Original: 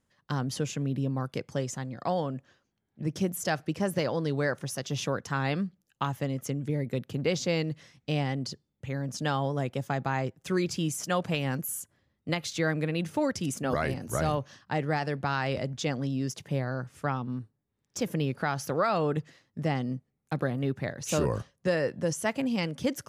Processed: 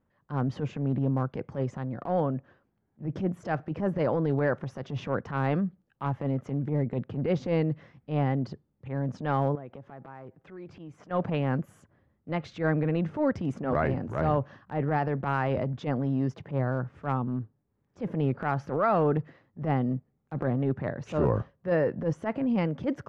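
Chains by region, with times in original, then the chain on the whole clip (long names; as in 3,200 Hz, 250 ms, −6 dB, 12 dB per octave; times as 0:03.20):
0:09.55–0:11.11: bass and treble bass −5 dB, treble −7 dB + downward compressor 12 to 1, threshold −41 dBFS
whole clip: low-pass filter 1,400 Hz 12 dB per octave; transient designer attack −11 dB, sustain +2 dB; level +4 dB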